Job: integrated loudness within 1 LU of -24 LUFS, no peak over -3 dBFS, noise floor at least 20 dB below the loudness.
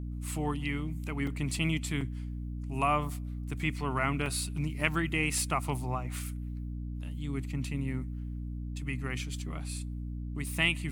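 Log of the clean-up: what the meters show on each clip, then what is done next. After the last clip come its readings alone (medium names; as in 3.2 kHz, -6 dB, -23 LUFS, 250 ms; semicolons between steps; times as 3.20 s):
dropouts 4; longest dropout 3.2 ms; hum 60 Hz; highest harmonic 300 Hz; hum level -35 dBFS; loudness -33.5 LUFS; peak level -11.0 dBFS; loudness target -24.0 LUFS
-> interpolate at 1.27/2.01/4.26/4.81 s, 3.2 ms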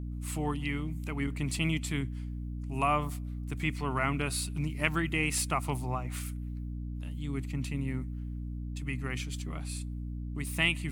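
dropouts 0; hum 60 Hz; highest harmonic 300 Hz; hum level -35 dBFS
-> hum notches 60/120/180/240/300 Hz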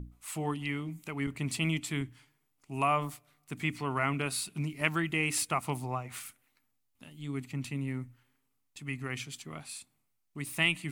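hum not found; loudness -33.5 LUFS; peak level -11.5 dBFS; loudness target -24.0 LUFS
-> trim +9.5 dB; peak limiter -3 dBFS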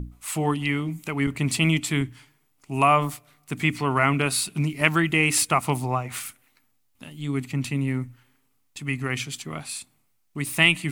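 loudness -24.0 LUFS; peak level -3.0 dBFS; noise floor -67 dBFS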